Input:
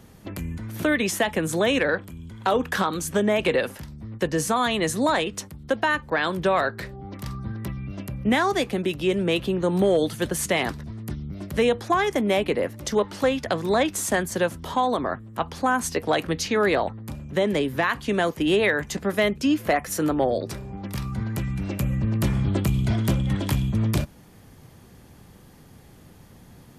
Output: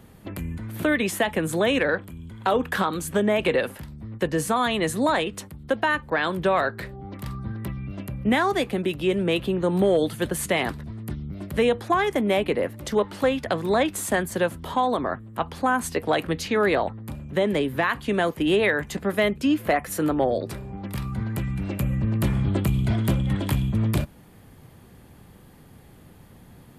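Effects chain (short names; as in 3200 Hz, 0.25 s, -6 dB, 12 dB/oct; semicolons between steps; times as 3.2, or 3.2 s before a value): bell 5800 Hz -8 dB 0.65 oct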